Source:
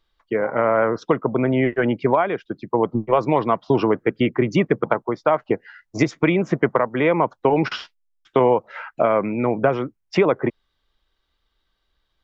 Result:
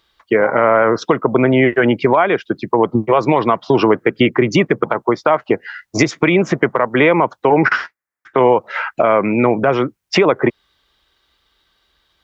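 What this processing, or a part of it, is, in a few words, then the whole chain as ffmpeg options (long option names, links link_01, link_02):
mastering chain: -filter_complex "[0:a]asettb=1/sr,asplit=3[link_01][link_02][link_03];[link_01]atrim=end=7.504[link_04];[link_02]atrim=start=7.5:end=8.38,asetpts=PTS-STARTPTS,afade=type=in:duration=0.004:curve=qsin,afade=type=out:start_time=0.876:duration=0.004:curve=qsin,highshelf=frequency=2400:width_type=q:width=3:gain=-10[link_05];[link_03]atrim=start=8.376[link_06];[link_04][link_05]acrossfade=duration=0.004:curve1=hsin:curve2=qsin[link_07];[link_07][link_06]acrossfade=duration=0.004:curve1=qsin:curve2=hsin,highpass=54,equalizer=frequency=370:width_type=o:width=0.36:gain=2,acompressor=threshold=-20dB:ratio=2,tiltshelf=frequency=850:gain=-3,alimiter=level_in=12dB:limit=-1dB:release=50:level=0:latency=1,volume=-1dB"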